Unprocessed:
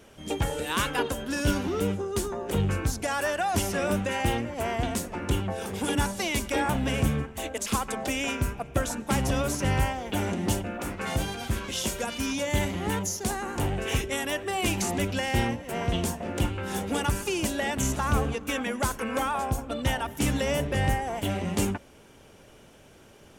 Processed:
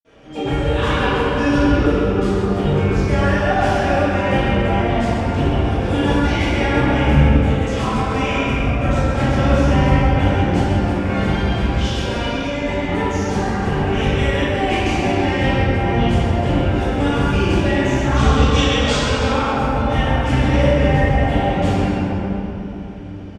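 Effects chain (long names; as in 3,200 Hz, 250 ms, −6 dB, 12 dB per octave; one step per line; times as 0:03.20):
0:11.80–0:12.61: compressor whose output falls as the input rises −32 dBFS, ratio −0.5
0:18.09–0:19.18: flat-topped bell 5,000 Hz +14.5 dB
repeating echo 133 ms, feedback 46%, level −8 dB
convolution reverb RT60 3.3 s, pre-delay 46 ms
level −5.5 dB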